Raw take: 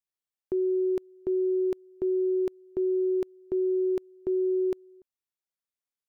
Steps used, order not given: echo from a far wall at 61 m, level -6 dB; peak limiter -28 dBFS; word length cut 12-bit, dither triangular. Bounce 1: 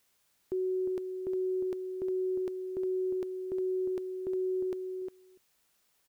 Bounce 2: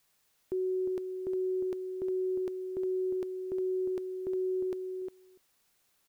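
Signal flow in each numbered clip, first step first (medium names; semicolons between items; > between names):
peak limiter > echo from a far wall > word length cut; peak limiter > word length cut > echo from a far wall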